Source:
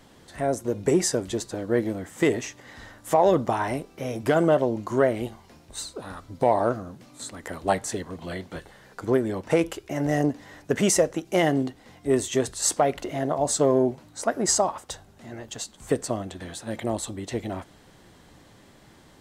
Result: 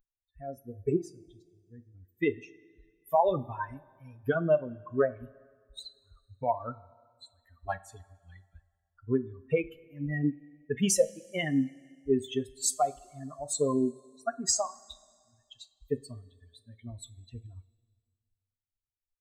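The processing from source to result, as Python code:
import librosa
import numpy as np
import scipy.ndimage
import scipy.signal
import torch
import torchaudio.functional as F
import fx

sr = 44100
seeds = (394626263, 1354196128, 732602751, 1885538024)

y = fx.bin_expand(x, sr, power=3.0)
y = fx.tone_stack(y, sr, knobs='10-0-1', at=(0.96, 1.93), fade=0.02)
y = fx.rev_double_slope(y, sr, seeds[0], early_s=0.25, late_s=1.9, knee_db=-18, drr_db=11.0)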